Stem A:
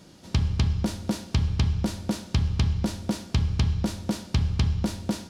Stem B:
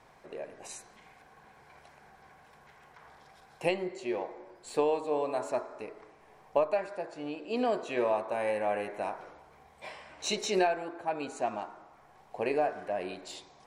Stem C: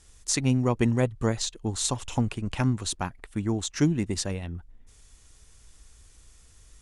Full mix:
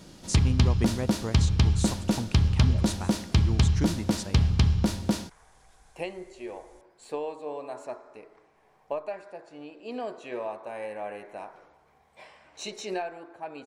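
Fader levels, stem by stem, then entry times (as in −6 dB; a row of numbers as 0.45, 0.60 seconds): +2.0, −5.5, −7.5 decibels; 0.00, 2.35, 0.00 seconds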